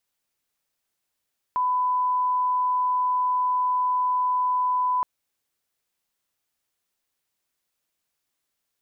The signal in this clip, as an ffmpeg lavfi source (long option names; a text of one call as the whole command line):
ffmpeg -f lavfi -i "sine=frequency=1000:duration=3.47:sample_rate=44100,volume=-1.94dB" out.wav